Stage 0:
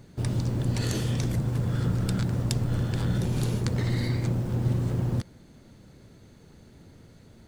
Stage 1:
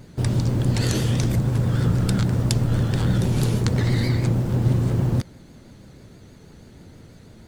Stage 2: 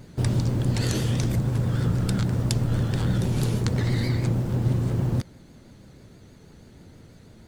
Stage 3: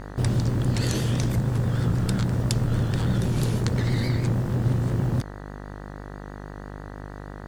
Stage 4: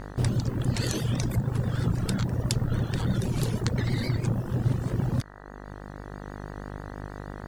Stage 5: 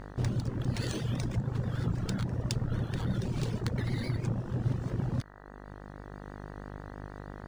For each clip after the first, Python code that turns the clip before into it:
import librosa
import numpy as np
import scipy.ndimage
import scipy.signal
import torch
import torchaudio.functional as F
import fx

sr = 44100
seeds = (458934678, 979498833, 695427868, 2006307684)

y1 = fx.vibrato(x, sr, rate_hz=6.2, depth_cents=80.0)
y1 = y1 * 10.0 ** (6.0 / 20.0)
y2 = fx.rider(y1, sr, range_db=10, speed_s=0.5)
y2 = y2 * 10.0 ** (-3.0 / 20.0)
y3 = fx.dmg_buzz(y2, sr, base_hz=50.0, harmonics=39, level_db=-38.0, tilt_db=-4, odd_only=False)
y4 = fx.dereverb_blind(y3, sr, rt60_s=1.2)
y4 = fx.rider(y4, sr, range_db=3, speed_s=0.5)
y5 = np.interp(np.arange(len(y4)), np.arange(len(y4))[::3], y4[::3])
y5 = y5 * 10.0 ** (-5.0 / 20.0)